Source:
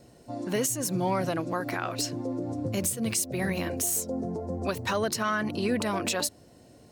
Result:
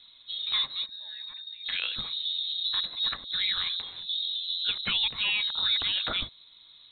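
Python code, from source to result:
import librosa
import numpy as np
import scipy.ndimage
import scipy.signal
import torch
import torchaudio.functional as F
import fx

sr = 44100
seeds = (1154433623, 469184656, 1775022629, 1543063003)

y = fx.vowel_filter(x, sr, vowel='i', at=(0.85, 1.64), fade=0.02)
y = fx.freq_invert(y, sr, carrier_hz=4000)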